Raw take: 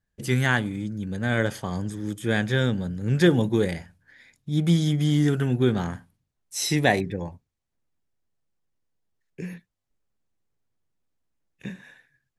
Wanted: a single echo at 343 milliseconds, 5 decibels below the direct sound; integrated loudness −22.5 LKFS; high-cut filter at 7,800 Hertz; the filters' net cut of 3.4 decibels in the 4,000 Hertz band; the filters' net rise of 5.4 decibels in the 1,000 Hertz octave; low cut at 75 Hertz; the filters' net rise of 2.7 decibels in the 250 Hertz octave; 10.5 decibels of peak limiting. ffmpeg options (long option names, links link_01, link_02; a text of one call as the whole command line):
ffmpeg -i in.wav -af "highpass=75,lowpass=7800,equalizer=frequency=250:width_type=o:gain=3.5,equalizer=frequency=1000:width_type=o:gain=8,equalizer=frequency=4000:width_type=o:gain=-4.5,alimiter=limit=-13dB:level=0:latency=1,aecho=1:1:343:0.562,volume=1.5dB" out.wav